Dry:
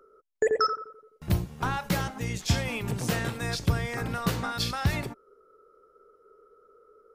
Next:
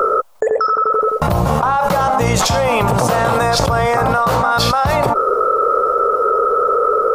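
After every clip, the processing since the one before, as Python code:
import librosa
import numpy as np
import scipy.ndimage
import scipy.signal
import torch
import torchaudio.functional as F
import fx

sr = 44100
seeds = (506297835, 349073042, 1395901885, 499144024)

y = fx.band_shelf(x, sr, hz=820.0, db=14.5, octaves=1.7)
y = fx.env_flatten(y, sr, amount_pct=100)
y = y * 10.0 ** (-5.0 / 20.0)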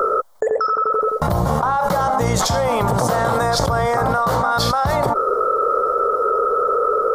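y = fx.peak_eq(x, sr, hz=2600.0, db=-13.0, octaves=0.32)
y = y * 10.0 ** (-3.0 / 20.0)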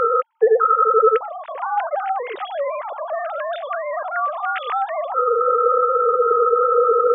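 y = fx.sine_speech(x, sr)
y = y * 10.0 ** (-1.0 / 20.0)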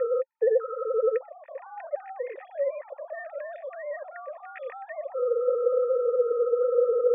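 y = fx.formant_cascade(x, sr, vowel='e')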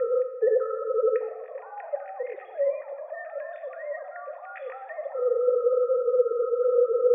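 y = fx.rev_plate(x, sr, seeds[0], rt60_s=1.3, hf_ratio=0.85, predelay_ms=0, drr_db=6.0)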